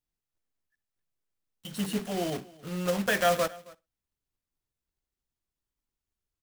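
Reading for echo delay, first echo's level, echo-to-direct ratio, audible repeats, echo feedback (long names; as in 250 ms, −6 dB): 61 ms, −22.5 dB, −19.5 dB, 2, repeats not evenly spaced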